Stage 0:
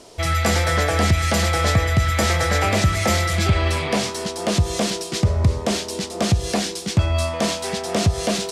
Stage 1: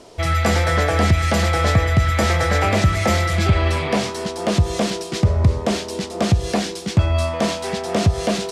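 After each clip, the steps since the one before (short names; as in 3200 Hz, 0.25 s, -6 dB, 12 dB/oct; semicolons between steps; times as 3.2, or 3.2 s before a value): high shelf 3900 Hz -7.5 dB; gain +2 dB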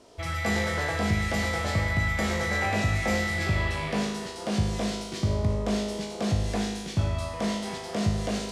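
resonator 52 Hz, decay 1.2 s, harmonics all, mix 90%; gain +3 dB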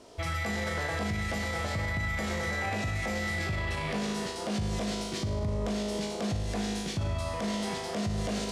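limiter -25 dBFS, peak gain reduction 11 dB; gain +1.5 dB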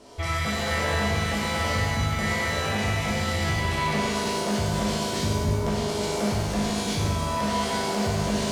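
shimmer reverb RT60 1.5 s, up +7 st, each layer -8 dB, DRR -4 dB; gain +1.5 dB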